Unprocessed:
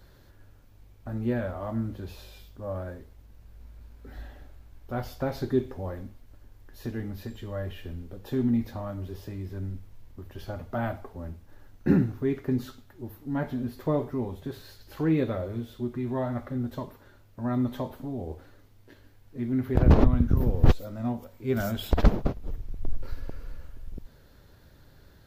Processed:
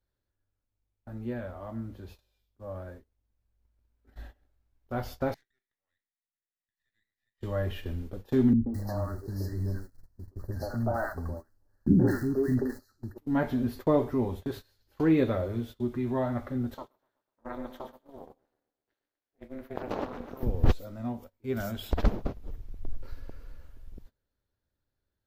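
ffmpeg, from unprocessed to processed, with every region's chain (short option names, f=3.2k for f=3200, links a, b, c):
-filter_complex "[0:a]asettb=1/sr,asplit=3[a][b][c];[a]atrim=end=5.344[d];[b]atrim=start=5.34:end=7.41,asetpts=PTS-STARTPTS,afade=t=in:d=0.004:c=qsin,afade=t=out:st=2.066:d=0.004:c=qsin,bandpass=f=1.9k:t=q:w=17,aemphasis=mode=production:type=75kf,aeval=exprs='max(val(0),0)':c=same[e];[c]atrim=start=7.406[f];[d][e]acrossfade=d=0.004:c1=hsin:c2=qsin[g];[g][f]acrossfade=d=0.004:c1=qsin:c2=hsin,asettb=1/sr,asplit=3[h][i][j];[h]atrim=end=8.534[k];[i]atrim=start=8.53:end=13.18,asetpts=PTS-STARTPTS,afade=t=in:d=0.004:c=qsin,afade=t=out:st=4.646:d=0.004:c=qsin,acrusher=bits=9:mode=log:mix=0:aa=0.000001,asuperstop=centerf=2800:order=20:qfactor=1.3,acrossover=split=300|1000[l][m][n];[m]adelay=130[o];[n]adelay=210[p];[l][o][p]amix=inputs=3:normalize=0,atrim=end_sample=205065[q];[j]atrim=start=13.176[r];[k][q]acrossfade=d=0.004:c1=hsin:c2=qsin[s];[s][r]acrossfade=d=0.004:c1=qsin:c2=hsin,asettb=1/sr,asplit=3[t][u][v];[t]atrim=end=16.744[w];[u]atrim=start=16.74:end=20.43,asetpts=PTS-STARTPTS,afade=t=in:d=0.004:c=qsin,afade=t=out:st=3.686:d=0.004:c=qsin,highpass=370,aecho=1:1:125|250|375|500|625|750:0.355|0.195|0.107|0.059|0.0325|0.0179,atrim=end_sample=162729,tremolo=f=270:d=1[x];[v]atrim=start=20.426[y];[w][x]acrossfade=d=0.004:c1=hsin:c2=qsin[z];[z][y]acrossfade=d=0.004:c1=qsin:c2=hsin,agate=range=-22dB:threshold=-41dB:ratio=16:detection=peak,equalizer=f=150:t=o:w=0.33:g=-6.5,dynaudnorm=f=960:g=11:m=11.5dB,volume=-7dB"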